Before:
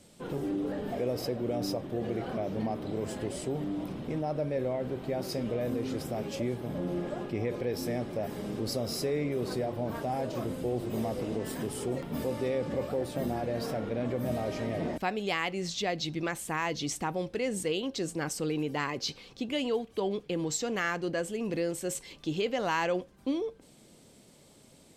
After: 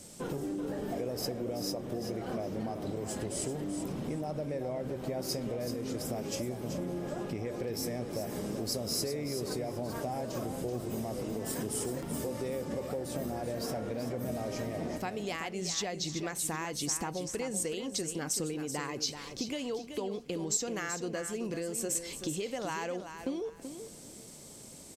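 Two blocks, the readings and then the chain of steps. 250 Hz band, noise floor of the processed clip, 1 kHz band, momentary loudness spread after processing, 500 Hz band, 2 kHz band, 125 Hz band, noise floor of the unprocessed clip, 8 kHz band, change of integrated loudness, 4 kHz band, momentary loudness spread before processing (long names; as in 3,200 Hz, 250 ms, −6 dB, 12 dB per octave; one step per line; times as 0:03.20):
−3.0 dB, −49 dBFS, −4.5 dB, 5 LU, −4.0 dB, −6.0 dB, −3.0 dB, −57 dBFS, +5.5 dB, −2.5 dB, −0.5 dB, 4 LU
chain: downward compressor 6 to 1, threshold −38 dBFS, peak gain reduction 12.5 dB
high shelf with overshoot 4,700 Hz +6 dB, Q 1.5
repeating echo 381 ms, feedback 21%, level −9 dB
level +4.5 dB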